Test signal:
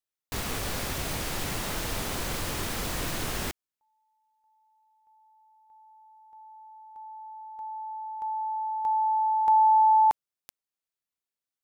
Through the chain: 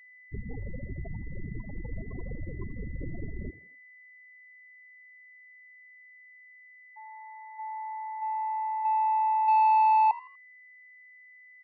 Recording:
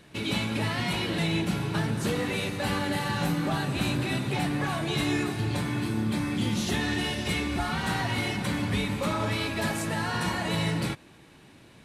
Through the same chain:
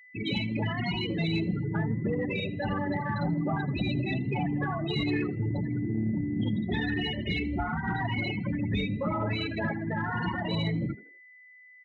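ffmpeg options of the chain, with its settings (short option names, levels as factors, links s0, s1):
-filter_complex "[0:a]anlmdn=0.251,afftfilt=real='re*gte(hypot(re,im),0.0794)':imag='im*gte(hypot(re,im),0.0794)':win_size=1024:overlap=0.75,highshelf=f=3000:g=3.5,aeval=exprs='val(0)+0.00282*sin(2*PI*2000*n/s)':c=same,asoftclip=type=tanh:threshold=0.15,asplit=4[s0][s1][s2][s3];[s1]adelay=81,afreqshift=74,volume=0.106[s4];[s2]adelay=162,afreqshift=148,volume=0.0359[s5];[s3]adelay=243,afreqshift=222,volume=0.0123[s6];[s0][s4][s5][s6]amix=inputs=4:normalize=0"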